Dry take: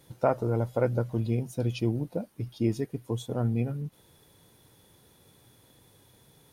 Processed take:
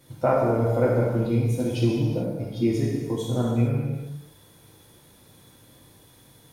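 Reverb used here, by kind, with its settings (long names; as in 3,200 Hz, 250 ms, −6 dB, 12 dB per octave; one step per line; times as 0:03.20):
reverb whose tail is shaped and stops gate 470 ms falling, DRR −5 dB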